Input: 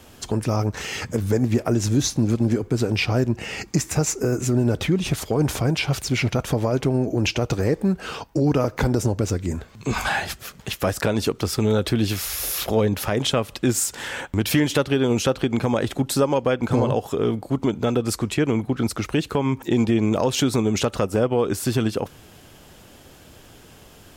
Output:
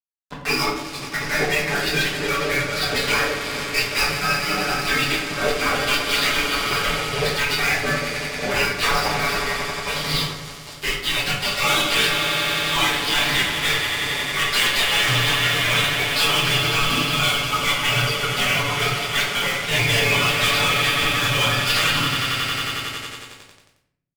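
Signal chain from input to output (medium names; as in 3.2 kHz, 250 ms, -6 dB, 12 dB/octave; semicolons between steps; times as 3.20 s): spectral noise reduction 26 dB; spectral gate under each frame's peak -30 dB weak; rotary cabinet horn 6 Hz, later 0.7 Hz, at 3.75 s; on a send: echo with a slow build-up 90 ms, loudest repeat 5, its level -16 dB; on the sum: resampled via 11.025 kHz; comb 7 ms, depth 92%; fuzz box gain 54 dB, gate -58 dBFS; simulated room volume 140 m³, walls mixed, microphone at 1.3 m; trim -8 dB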